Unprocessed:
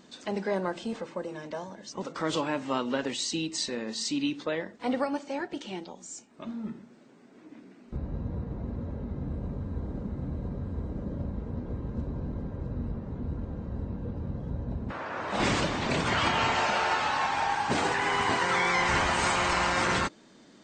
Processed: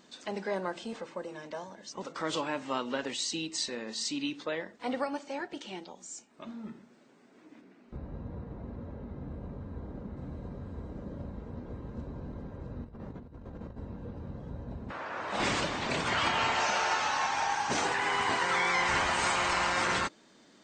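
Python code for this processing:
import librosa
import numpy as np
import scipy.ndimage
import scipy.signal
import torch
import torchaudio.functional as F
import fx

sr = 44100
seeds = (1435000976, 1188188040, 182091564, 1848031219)

y = fx.lowpass(x, sr, hz=3400.0, slope=6, at=(7.61, 10.17))
y = fx.over_compress(y, sr, threshold_db=-37.0, ratio=-0.5, at=(12.84, 13.79))
y = fx.peak_eq(y, sr, hz=6000.0, db=9.0, octaves=0.34, at=(16.6, 17.85))
y = fx.low_shelf(y, sr, hz=370.0, db=-6.5)
y = F.gain(torch.from_numpy(y), -1.5).numpy()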